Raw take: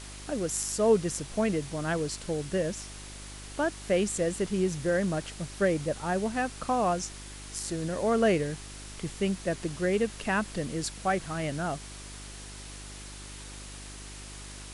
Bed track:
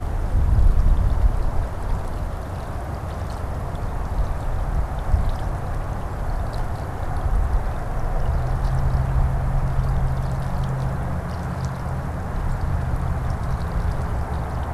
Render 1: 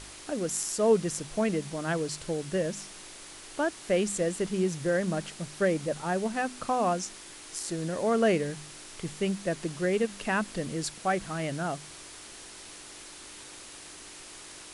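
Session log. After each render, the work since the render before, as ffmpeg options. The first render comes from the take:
-af "bandreject=f=50:t=h:w=4,bandreject=f=100:t=h:w=4,bandreject=f=150:t=h:w=4,bandreject=f=200:t=h:w=4,bandreject=f=250:t=h:w=4"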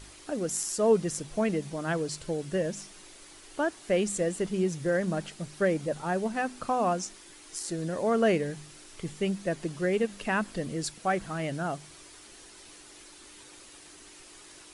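-af "afftdn=nr=7:nf=-47"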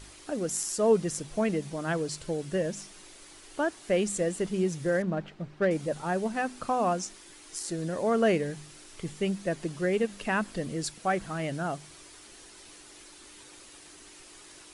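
-filter_complex "[0:a]asettb=1/sr,asplit=3[a][b][c];[a]atrim=end=5.024[d];[b]atrim=start=5.02:end=5.71,asetpts=PTS-STARTPTS,afade=t=in:d=0.004:c=qsin,afade=t=out:st=0.686:d=0.004:c=qsin,adynamicsmooth=sensitivity=2:basefreq=2.2k[e];[c]atrim=start=5.706[f];[d][e]acrossfade=d=0.004:c1=hsin:c2=qsin[g];[g][f]acrossfade=d=0.004:c1=qsin:c2=hsin"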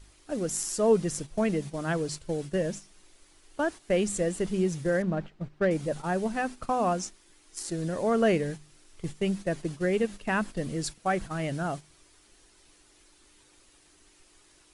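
-af "agate=range=-10dB:threshold=-37dB:ratio=16:detection=peak,lowshelf=f=77:g=11.5"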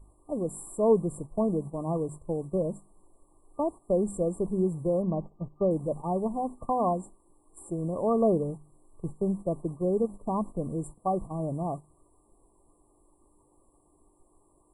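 -af "afftfilt=real='re*(1-between(b*sr/4096,1200,7300))':imag='im*(1-between(b*sr/4096,1200,7300))':win_size=4096:overlap=0.75,highshelf=f=4.2k:t=q:w=1.5:g=-8"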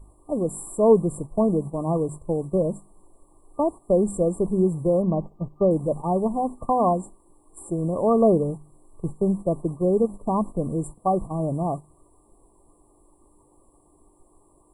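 -af "volume=6dB"

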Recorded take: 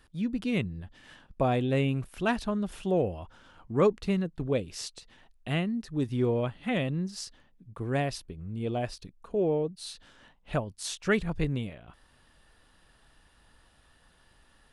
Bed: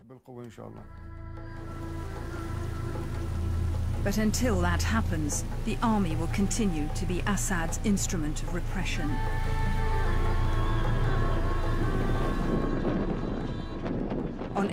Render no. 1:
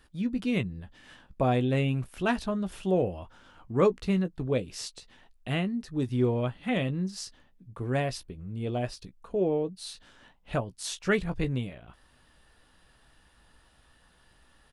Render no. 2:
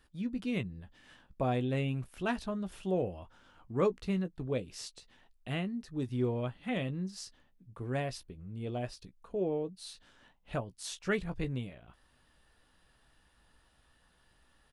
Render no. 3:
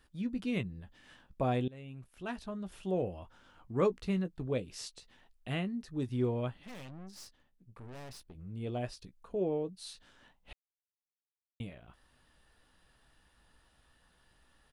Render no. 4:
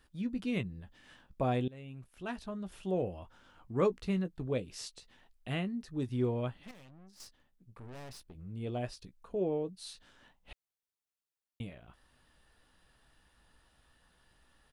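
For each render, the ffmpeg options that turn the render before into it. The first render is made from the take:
-filter_complex "[0:a]asplit=2[a][b];[b]adelay=16,volume=-10.5dB[c];[a][c]amix=inputs=2:normalize=0"
-af "volume=-6dB"
-filter_complex "[0:a]asettb=1/sr,asplit=3[a][b][c];[a]atrim=end=6.634[d];[b]atrim=start=6.63:end=8.35,asetpts=PTS-STARTPTS,afade=t=in:d=0.004:c=qsin,afade=t=out:st=1.716:d=0.004:c=qsin,aeval=exprs='(tanh(200*val(0)+0.75)-tanh(0.75))/200':c=same[e];[c]atrim=start=8.346[f];[d][e]acrossfade=d=0.004:c1=hsin:c2=qsin[g];[g][f]acrossfade=d=0.004:c1=qsin:c2=hsin,asplit=4[h][i][j][k];[h]atrim=end=1.68,asetpts=PTS-STARTPTS,afade=t=out:st=1.676:d=0.004:c=hsin:silence=0.0841395[l];[i]atrim=start=1.68:end=10.53,asetpts=PTS-STARTPTS,afade=t=in:d=1.51:silence=0.0841395,afade=t=out:st=8.846:d=0.004:c=hsin[m];[j]atrim=start=10.53:end=11.6,asetpts=PTS-STARTPTS,volume=0[n];[k]atrim=start=11.6,asetpts=PTS-STARTPTS,afade=t=in:d=0.004:c=hsin[o];[l][m][n][o]concat=n=4:v=0:a=1"
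-filter_complex "[0:a]asplit=3[a][b][c];[a]atrim=end=6.712[d];[b]atrim=start=6.708:end=7.202,asetpts=PTS-STARTPTS,volume=-8.5dB[e];[c]atrim=start=7.198[f];[d][e]acrossfade=d=0.004:c1=hsin:c2=hsin[g];[g][f]acrossfade=d=0.004:c1=hsin:c2=hsin"

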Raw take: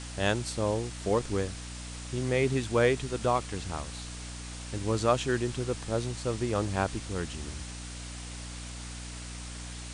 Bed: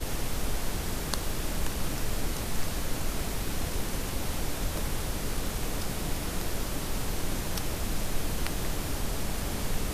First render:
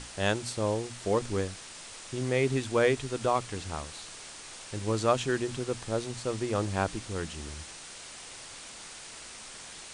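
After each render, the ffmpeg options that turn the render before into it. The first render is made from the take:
-af "bandreject=f=60:t=h:w=6,bandreject=f=120:t=h:w=6,bandreject=f=180:t=h:w=6,bandreject=f=240:t=h:w=6,bandreject=f=300:t=h:w=6"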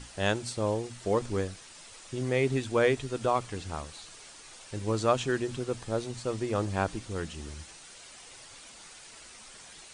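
-af "afftdn=nr=7:nf=-46"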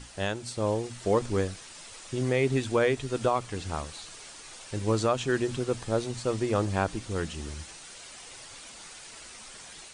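-af "alimiter=limit=-17.5dB:level=0:latency=1:release=313,dynaudnorm=f=520:g=3:m=3.5dB"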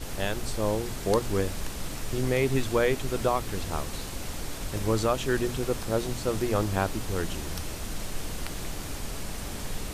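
-filter_complex "[1:a]volume=-4dB[a];[0:a][a]amix=inputs=2:normalize=0"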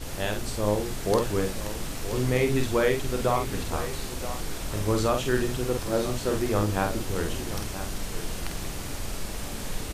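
-filter_complex "[0:a]asplit=2[a][b];[b]adelay=48,volume=-5dB[c];[a][c]amix=inputs=2:normalize=0,aecho=1:1:976:0.237"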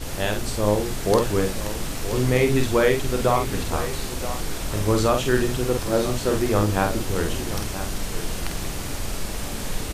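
-af "volume=4.5dB"

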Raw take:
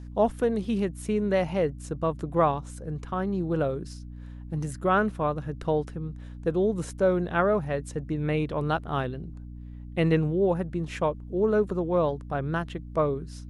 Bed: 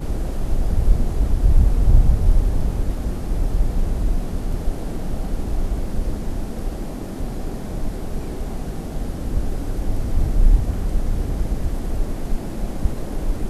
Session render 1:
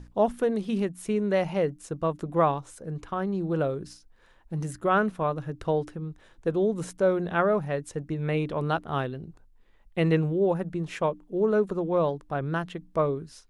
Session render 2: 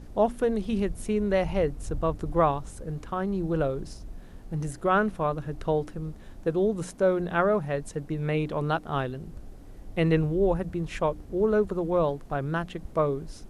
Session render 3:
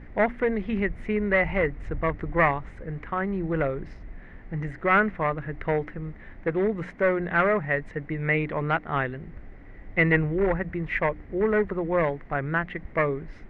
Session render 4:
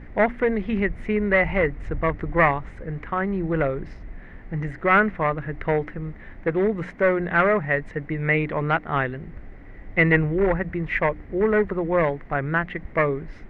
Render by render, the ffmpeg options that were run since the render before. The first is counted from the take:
-af "bandreject=f=60:t=h:w=6,bandreject=f=120:t=h:w=6,bandreject=f=180:t=h:w=6,bandreject=f=240:t=h:w=6,bandreject=f=300:t=h:w=6"
-filter_complex "[1:a]volume=-21dB[a];[0:a][a]amix=inputs=2:normalize=0"
-af "aeval=exprs='clip(val(0),-1,0.1)':c=same,lowpass=f=2k:t=q:w=7.1"
-af "volume=3dB"

